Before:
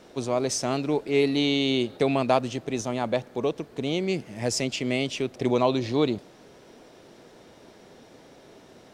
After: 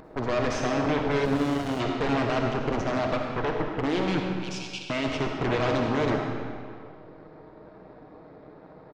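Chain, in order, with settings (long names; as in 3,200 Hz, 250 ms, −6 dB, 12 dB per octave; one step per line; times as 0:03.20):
adaptive Wiener filter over 15 samples
comb filter 6.5 ms, depth 59%
0:03.03–0:03.61: downward compressor 10 to 1, threshold −26 dBFS, peak gain reduction 9 dB
brickwall limiter −17.5 dBFS, peak gain reduction 11 dB
upward compression, threshold −44 dBFS
harmonic generator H 8 −8 dB, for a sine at −17.5 dBFS
Gaussian smoothing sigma 1.8 samples
pitch vibrato 2.1 Hz 24 cents
0:04.31–0:04.90: linear-phase brick-wall high-pass 2,200 Hz
convolution reverb RT60 2.1 s, pre-delay 20 ms, DRR 1.5 dB
0:01.25–0:01.80: windowed peak hold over 33 samples
level −2 dB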